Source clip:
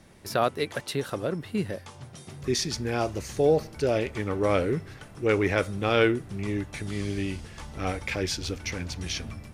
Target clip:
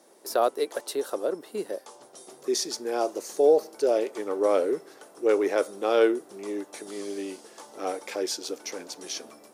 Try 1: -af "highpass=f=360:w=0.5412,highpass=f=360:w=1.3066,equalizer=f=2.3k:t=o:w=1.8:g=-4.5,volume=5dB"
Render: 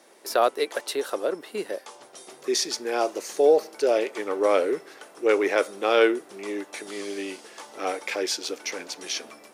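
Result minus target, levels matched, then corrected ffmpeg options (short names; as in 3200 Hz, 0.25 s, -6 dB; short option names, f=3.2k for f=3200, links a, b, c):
2000 Hz band +6.0 dB
-af "highpass=f=360:w=0.5412,highpass=f=360:w=1.3066,equalizer=f=2.3k:t=o:w=1.8:g=-14.5,volume=5dB"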